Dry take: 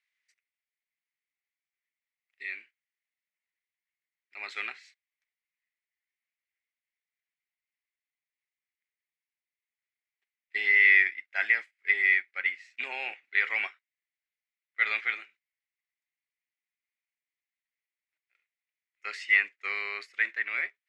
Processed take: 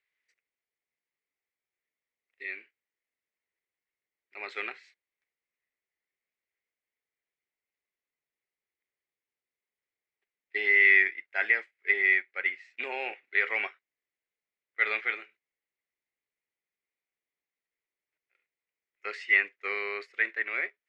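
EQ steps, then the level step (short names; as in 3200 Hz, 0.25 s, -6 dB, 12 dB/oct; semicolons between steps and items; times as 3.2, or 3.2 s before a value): LPF 2500 Hz 6 dB/oct; bell 430 Hz +9.5 dB 0.97 oct; +1.5 dB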